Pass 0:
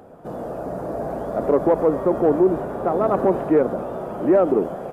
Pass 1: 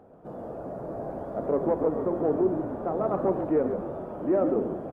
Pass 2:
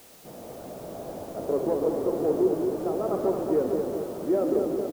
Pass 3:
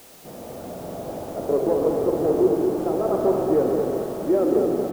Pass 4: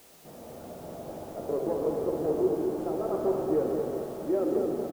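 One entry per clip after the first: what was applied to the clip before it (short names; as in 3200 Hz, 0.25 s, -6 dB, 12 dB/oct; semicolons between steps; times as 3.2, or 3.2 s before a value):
high shelf 2400 Hz -12 dB; de-hum 58.85 Hz, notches 35; frequency-shifting echo 0.138 s, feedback 36%, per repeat -56 Hz, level -7.5 dB; gain -7 dB
feedback echo 0.221 s, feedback 56%, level -5.5 dB; dynamic EQ 400 Hz, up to +6 dB, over -36 dBFS, Q 1.9; requantised 8-bit, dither triangular; gain -4.5 dB
spring tank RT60 3.7 s, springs 44 ms, chirp 60 ms, DRR 5 dB; gain +4 dB
doubler 13 ms -11 dB; gain -8 dB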